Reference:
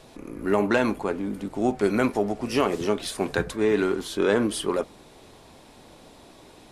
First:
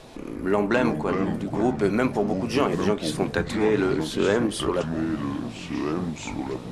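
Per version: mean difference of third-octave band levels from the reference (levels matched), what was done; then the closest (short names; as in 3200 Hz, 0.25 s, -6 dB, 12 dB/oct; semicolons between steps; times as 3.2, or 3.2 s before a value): 5.5 dB: high shelf 10000 Hz -8.5 dB; in parallel at 0 dB: compressor, threshold -35 dBFS, peak gain reduction 17 dB; on the sum: echoes that change speed 0.137 s, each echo -5 st, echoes 3, each echo -6 dB; gain -1.5 dB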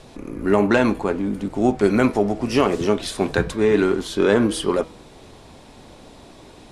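1.5 dB: LPF 10000 Hz 12 dB/oct; low shelf 210 Hz +5 dB; de-hum 161.7 Hz, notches 37; gain +4 dB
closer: second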